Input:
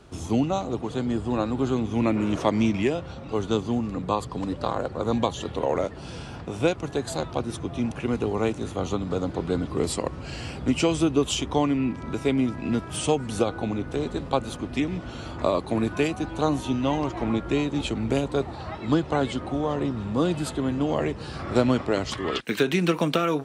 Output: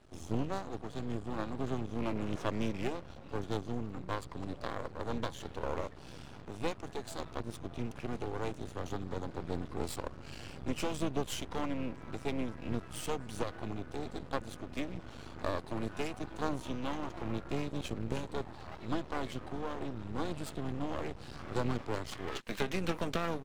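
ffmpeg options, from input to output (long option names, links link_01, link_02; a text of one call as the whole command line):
ffmpeg -i in.wav -filter_complex "[0:a]asplit=3[link_01][link_02][link_03];[link_02]asetrate=22050,aresample=44100,atempo=2,volume=-15dB[link_04];[link_03]asetrate=29433,aresample=44100,atempo=1.49831,volume=-16dB[link_05];[link_01][link_04][link_05]amix=inputs=3:normalize=0,aeval=exprs='max(val(0),0)':channel_layout=same,volume=-8dB" out.wav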